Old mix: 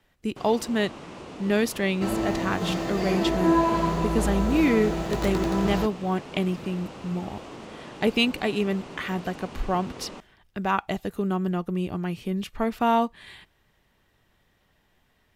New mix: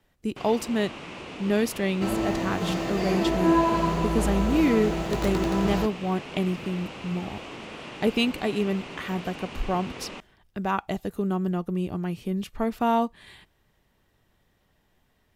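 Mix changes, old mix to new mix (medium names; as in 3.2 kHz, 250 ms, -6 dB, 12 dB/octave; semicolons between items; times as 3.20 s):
speech: add peaking EQ 2.2 kHz -4 dB 2.5 oct; first sound: add peaking EQ 2.5 kHz +9 dB 1.1 oct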